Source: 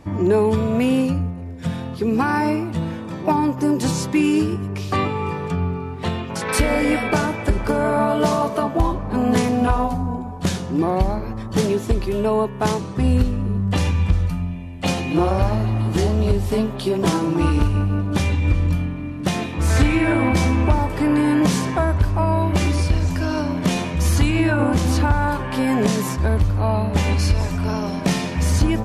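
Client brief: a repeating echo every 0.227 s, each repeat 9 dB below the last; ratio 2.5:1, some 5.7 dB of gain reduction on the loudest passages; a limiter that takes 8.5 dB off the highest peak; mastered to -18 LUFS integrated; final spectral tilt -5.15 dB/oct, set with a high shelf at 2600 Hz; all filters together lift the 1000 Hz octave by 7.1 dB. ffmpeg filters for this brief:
-af "equalizer=f=1k:t=o:g=9,highshelf=f=2.6k:g=-4,acompressor=threshold=-19dB:ratio=2.5,alimiter=limit=-14dB:level=0:latency=1,aecho=1:1:227|454|681|908:0.355|0.124|0.0435|0.0152,volume=5.5dB"

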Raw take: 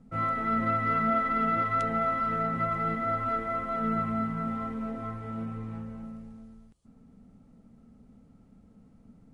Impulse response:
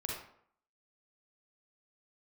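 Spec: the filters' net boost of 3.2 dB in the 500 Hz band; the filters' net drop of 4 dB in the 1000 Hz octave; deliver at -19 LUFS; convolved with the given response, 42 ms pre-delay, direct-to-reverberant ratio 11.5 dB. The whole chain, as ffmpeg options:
-filter_complex "[0:a]equalizer=f=500:t=o:g=8.5,equalizer=f=1k:t=o:g=-8.5,asplit=2[a][b];[1:a]atrim=start_sample=2205,adelay=42[c];[b][c]afir=irnorm=-1:irlink=0,volume=-13.5dB[d];[a][d]amix=inputs=2:normalize=0,volume=11.5dB"

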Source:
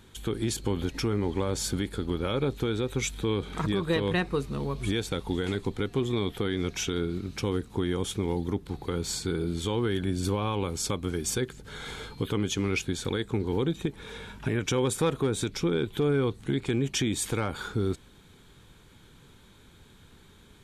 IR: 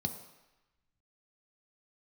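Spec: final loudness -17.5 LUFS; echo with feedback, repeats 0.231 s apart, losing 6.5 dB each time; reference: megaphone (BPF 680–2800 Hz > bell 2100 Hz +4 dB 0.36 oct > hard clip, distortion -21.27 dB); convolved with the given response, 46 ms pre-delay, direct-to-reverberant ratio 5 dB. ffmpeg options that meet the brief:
-filter_complex "[0:a]aecho=1:1:231|462|693|924|1155|1386:0.473|0.222|0.105|0.0491|0.0231|0.0109,asplit=2[a][b];[1:a]atrim=start_sample=2205,adelay=46[c];[b][c]afir=irnorm=-1:irlink=0,volume=-6.5dB[d];[a][d]amix=inputs=2:normalize=0,highpass=680,lowpass=2.8k,equalizer=f=2.1k:t=o:w=0.36:g=4,asoftclip=type=hard:threshold=-24.5dB,volume=18dB"

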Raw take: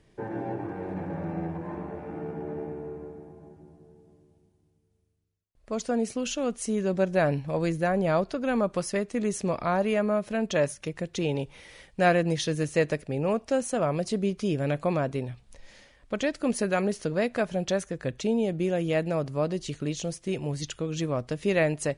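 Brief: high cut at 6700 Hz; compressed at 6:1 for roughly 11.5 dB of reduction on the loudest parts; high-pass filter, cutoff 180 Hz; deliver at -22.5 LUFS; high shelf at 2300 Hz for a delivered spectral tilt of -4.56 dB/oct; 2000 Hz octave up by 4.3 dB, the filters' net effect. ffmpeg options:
-af "highpass=180,lowpass=6.7k,equalizer=f=2k:t=o:g=4,highshelf=f=2.3k:g=3,acompressor=threshold=-29dB:ratio=6,volume=12dB"

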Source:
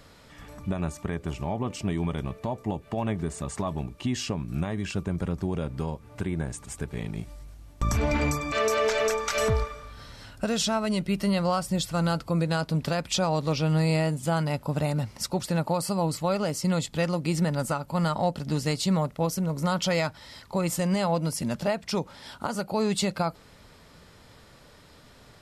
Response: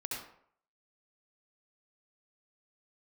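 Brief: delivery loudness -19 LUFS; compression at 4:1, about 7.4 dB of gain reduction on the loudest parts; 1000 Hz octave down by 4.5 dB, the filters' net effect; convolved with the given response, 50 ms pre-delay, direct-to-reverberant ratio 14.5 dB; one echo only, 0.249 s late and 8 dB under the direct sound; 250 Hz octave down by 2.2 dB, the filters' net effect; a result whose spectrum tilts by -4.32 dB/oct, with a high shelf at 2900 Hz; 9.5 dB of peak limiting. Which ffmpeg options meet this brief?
-filter_complex "[0:a]equalizer=f=250:t=o:g=-3.5,equalizer=f=1k:t=o:g=-7,highshelf=f=2.9k:g=8,acompressor=threshold=-29dB:ratio=4,alimiter=level_in=0.5dB:limit=-24dB:level=0:latency=1,volume=-0.5dB,aecho=1:1:249:0.398,asplit=2[a][b];[1:a]atrim=start_sample=2205,adelay=50[c];[b][c]afir=irnorm=-1:irlink=0,volume=-16dB[d];[a][d]amix=inputs=2:normalize=0,volume=15dB"

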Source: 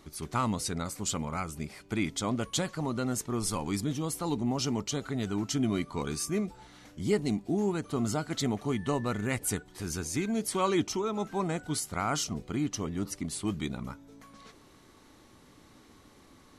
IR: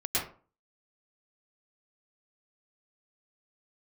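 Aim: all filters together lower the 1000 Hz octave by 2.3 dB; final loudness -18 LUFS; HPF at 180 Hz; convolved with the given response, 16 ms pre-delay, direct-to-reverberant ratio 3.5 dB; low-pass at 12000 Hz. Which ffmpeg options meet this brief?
-filter_complex "[0:a]highpass=180,lowpass=12k,equalizer=f=1k:t=o:g=-3,asplit=2[a][b];[1:a]atrim=start_sample=2205,adelay=16[c];[b][c]afir=irnorm=-1:irlink=0,volume=-11.5dB[d];[a][d]amix=inputs=2:normalize=0,volume=13.5dB"

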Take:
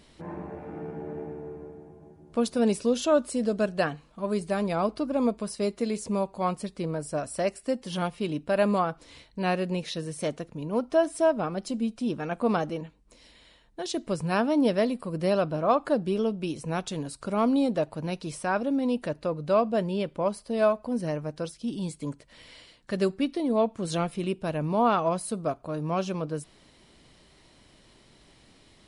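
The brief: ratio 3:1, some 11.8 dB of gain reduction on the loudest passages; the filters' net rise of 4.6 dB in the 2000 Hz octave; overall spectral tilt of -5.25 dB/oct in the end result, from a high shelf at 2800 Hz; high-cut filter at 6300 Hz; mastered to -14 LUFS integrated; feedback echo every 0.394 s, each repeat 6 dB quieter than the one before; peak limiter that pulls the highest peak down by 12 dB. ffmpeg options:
-af "lowpass=6.3k,equalizer=f=2k:t=o:g=5,highshelf=f=2.8k:g=3.5,acompressor=threshold=-33dB:ratio=3,alimiter=level_in=8dB:limit=-24dB:level=0:latency=1,volume=-8dB,aecho=1:1:394|788|1182|1576|1970|2364:0.501|0.251|0.125|0.0626|0.0313|0.0157,volume=26dB"

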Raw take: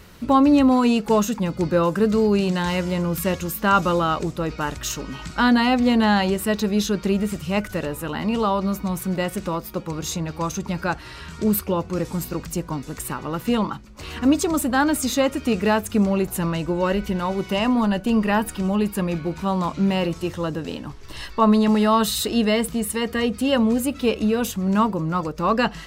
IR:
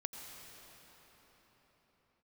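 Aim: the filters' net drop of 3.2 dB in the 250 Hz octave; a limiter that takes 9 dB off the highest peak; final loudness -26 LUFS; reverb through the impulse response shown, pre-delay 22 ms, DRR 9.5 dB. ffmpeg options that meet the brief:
-filter_complex "[0:a]equalizer=f=250:t=o:g=-4,alimiter=limit=-15dB:level=0:latency=1,asplit=2[a][b];[1:a]atrim=start_sample=2205,adelay=22[c];[b][c]afir=irnorm=-1:irlink=0,volume=-8.5dB[d];[a][d]amix=inputs=2:normalize=0,volume=-1dB"

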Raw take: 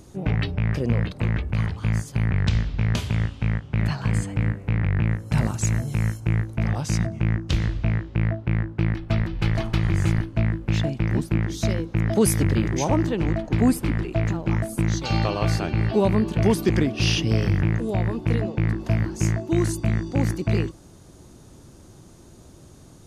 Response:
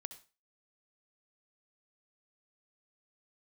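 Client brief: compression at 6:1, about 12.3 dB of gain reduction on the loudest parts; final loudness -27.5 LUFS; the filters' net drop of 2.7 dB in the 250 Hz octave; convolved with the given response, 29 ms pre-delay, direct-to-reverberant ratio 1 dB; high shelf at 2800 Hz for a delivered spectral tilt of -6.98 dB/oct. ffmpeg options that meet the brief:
-filter_complex "[0:a]equalizer=f=250:t=o:g=-4,highshelf=f=2.8k:g=-5,acompressor=threshold=-31dB:ratio=6,asplit=2[a][b];[1:a]atrim=start_sample=2205,adelay=29[c];[b][c]afir=irnorm=-1:irlink=0,volume=3dB[d];[a][d]amix=inputs=2:normalize=0,volume=5dB"

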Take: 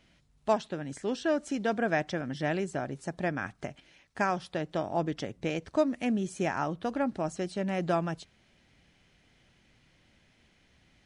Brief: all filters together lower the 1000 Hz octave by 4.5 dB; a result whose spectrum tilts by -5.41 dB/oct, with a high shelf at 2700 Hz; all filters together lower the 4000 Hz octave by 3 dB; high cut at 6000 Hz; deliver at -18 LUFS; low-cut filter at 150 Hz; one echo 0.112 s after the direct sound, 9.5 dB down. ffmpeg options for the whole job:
-af "highpass=150,lowpass=6k,equalizer=f=1k:t=o:g=-7,highshelf=f=2.7k:g=3.5,equalizer=f=4k:t=o:g=-6,aecho=1:1:112:0.335,volume=15.5dB"

